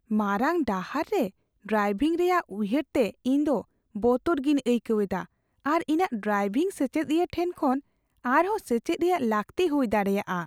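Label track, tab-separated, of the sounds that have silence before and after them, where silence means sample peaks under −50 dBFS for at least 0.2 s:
1.650000	3.640000	sound
3.950000	5.260000	sound
5.650000	7.800000	sound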